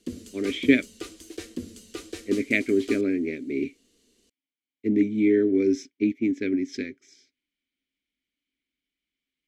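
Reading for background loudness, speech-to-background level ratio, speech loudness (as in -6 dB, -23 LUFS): -40.0 LUFS, 15.0 dB, -25.0 LUFS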